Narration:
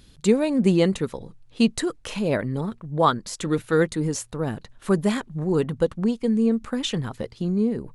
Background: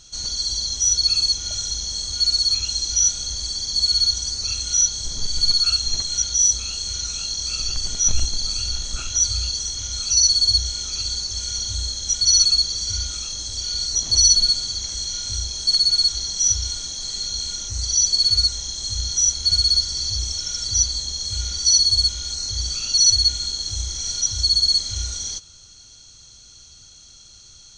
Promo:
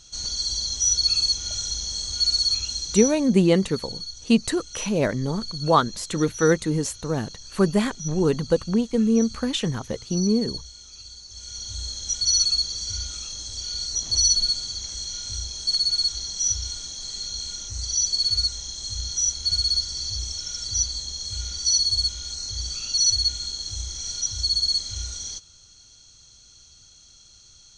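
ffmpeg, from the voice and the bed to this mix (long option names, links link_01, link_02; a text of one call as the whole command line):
ffmpeg -i stem1.wav -i stem2.wav -filter_complex "[0:a]adelay=2700,volume=1dB[link_01];[1:a]volume=9.5dB,afade=type=out:start_time=2.45:duration=0.87:silence=0.188365,afade=type=in:start_time=11.24:duration=0.72:silence=0.251189[link_02];[link_01][link_02]amix=inputs=2:normalize=0" out.wav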